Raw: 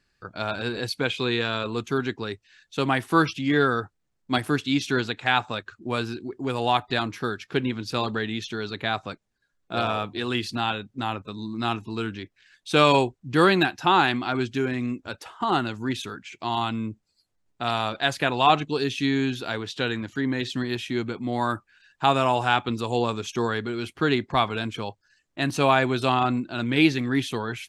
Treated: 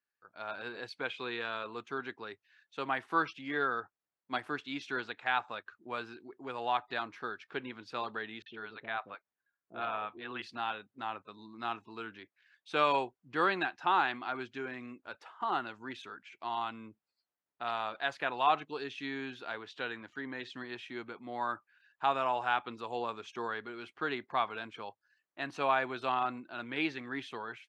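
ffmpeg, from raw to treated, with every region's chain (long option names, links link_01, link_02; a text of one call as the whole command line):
ffmpeg -i in.wav -filter_complex "[0:a]asettb=1/sr,asplit=3[link_01][link_02][link_03];[link_01]atrim=end=8.424[link_04];[link_02]atrim=start=8.42:end=10.42,asetpts=PTS-STARTPTS,afade=type=in:duration=0.004:curve=qsin,afade=type=out:start_time=1.996:duration=0.004:curve=qsin,lowpass=frequency=3400:width=0.5412,lowpass=frequency=3400:width=1.3066,acrossover=split=510[link_05][link_06];[link_06]adelay=40[link_07];[link_05][link_07]amix=inputs=2:normalize=0,atrim=end_sample=88200[link_08];[link_03]atrim=start=10.416[link_09];[link_04][link_08]acrossfade=duration=0.004:curve1=hsin:curve2=qsin[link_10];[link_10][link_09]acrossfade=duration=0.004:curve1=qsin:curve2=hsin,lowpass=1200,aderivative,dynaudnorm=framelen=270:gausssize=3:maxgain=11dB" out.wav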